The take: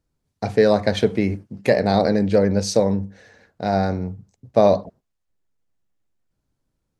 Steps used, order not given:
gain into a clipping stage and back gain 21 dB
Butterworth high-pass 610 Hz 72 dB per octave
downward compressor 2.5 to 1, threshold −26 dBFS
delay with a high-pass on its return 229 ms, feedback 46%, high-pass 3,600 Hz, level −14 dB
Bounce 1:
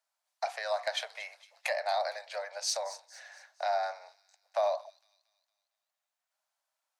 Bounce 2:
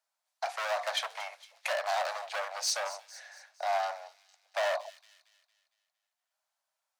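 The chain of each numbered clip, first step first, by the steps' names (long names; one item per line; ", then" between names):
downward compressor, then Butterworth high-pass, then gain into a clipping stage and back, then delay with a high-pass on its return
gain into a clipping stage and back, then delay with a high-pass on its return, then downward compressor, then Butterworth high-pass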